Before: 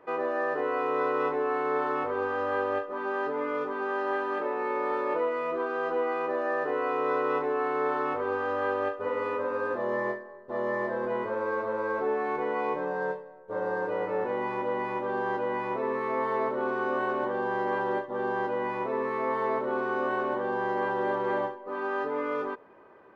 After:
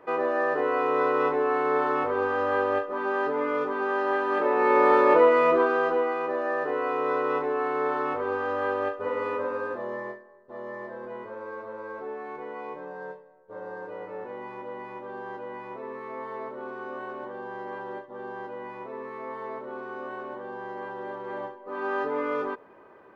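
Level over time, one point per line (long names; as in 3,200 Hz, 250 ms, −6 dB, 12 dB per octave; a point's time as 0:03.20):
0:04.22 +3.5 dB
0:04.79 +10.5 dB
0:05.49 +10.5 dB
0:06.15 +1 dB
0:09.44 +1 dB
0:10.25 −8 dB
0:21.26 −8 dB
0:21.90 +2 dB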